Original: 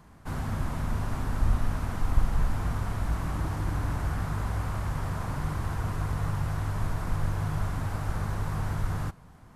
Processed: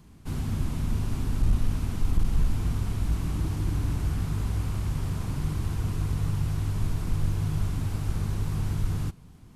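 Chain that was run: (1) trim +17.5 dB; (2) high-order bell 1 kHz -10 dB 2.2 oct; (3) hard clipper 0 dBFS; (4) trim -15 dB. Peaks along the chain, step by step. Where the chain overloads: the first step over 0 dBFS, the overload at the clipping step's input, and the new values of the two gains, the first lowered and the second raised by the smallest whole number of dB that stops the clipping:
+8.0 dBFS, +7.5 dBFS, 0.0 dBFS, -15.0 dBFS; step 1, 7.5 dB; step 1 +9.5 dB, step 4 -7 dB

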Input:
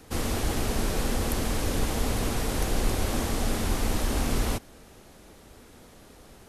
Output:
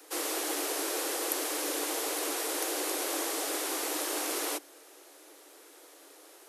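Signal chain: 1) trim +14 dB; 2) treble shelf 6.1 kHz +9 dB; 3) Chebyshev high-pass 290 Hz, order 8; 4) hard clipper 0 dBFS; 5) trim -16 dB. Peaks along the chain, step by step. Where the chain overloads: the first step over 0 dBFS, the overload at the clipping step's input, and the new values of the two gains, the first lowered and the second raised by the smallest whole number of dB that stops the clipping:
+1.5 dBFS, +4.0 dBFS, +3.0 dBFS, 0.0 dBFS, -16.0 dBFS; step 1, 3.0 dB; step 1 +11 dB, step 5 -13 dB

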